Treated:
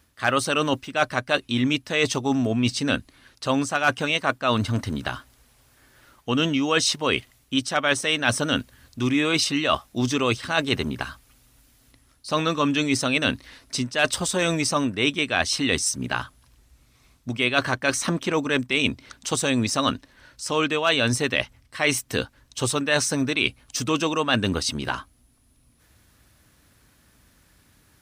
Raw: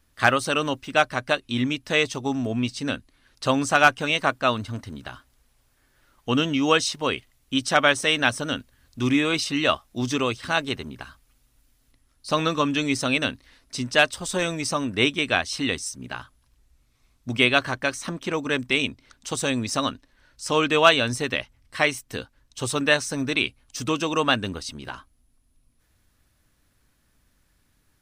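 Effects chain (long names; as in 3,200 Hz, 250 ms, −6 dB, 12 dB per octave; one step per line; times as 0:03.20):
high-pass filter 55 Hz
reversed playback
downward compressor 6 to 1, threshold −28 dBFS, peak gain reduction 17 dB
reversed playback
level +9 dB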